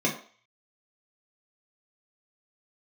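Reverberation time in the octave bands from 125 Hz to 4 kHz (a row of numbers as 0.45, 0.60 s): 0.20, 0.35, 0.45, 0.45, 0.50, 0.50 s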